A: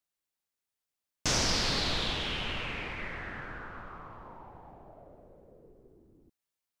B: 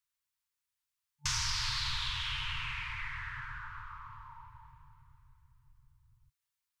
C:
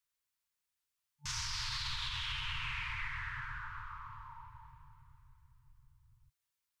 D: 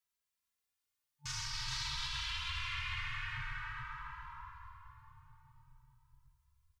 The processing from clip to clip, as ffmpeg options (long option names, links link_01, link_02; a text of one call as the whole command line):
ffmpeg -i in.wav -af "afftfilt=real='re*(1-between(b*sr/4096,150,880))':imag='im*(1-between(b*sr/4096,150,880))':win_size=4096:overlap=0.75,acompressor=threshold=-33dB:ratio=2" out.wav
ffmpeg -i in.wav -af "alimiter=level_in=5dB:limit=-24dB:level=0:latency=1:release=84,volume=-5dB" out.wav
ffmpeg -i in.wav -filter_complex "[0:a]aecho=1:1:426|852|1278|1704:0.631|0.208|0.0687|0.0227,asplit=2[link_01][link_02];[link_02]adelay=2.6,afreqshift=0.48[link_03];[link_01][link_03]amix=inputs=2:normalize=1,volume=1dB" out.wav